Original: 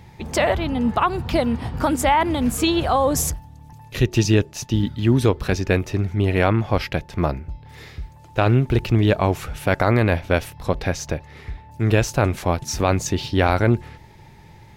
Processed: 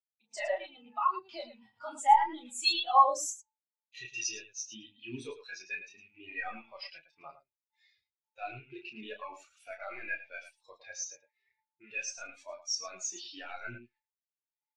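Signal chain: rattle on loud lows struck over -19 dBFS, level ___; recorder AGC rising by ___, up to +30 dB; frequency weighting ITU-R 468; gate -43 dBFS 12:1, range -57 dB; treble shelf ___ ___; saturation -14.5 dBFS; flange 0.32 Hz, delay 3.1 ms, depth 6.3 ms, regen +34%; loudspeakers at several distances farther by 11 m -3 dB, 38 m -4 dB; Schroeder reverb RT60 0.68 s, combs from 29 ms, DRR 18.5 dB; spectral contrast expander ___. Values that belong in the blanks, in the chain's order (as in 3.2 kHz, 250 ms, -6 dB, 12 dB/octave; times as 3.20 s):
-25 dBFS, 5.1 dB/s, 6.1 kHz, +4 dB, 2.5:1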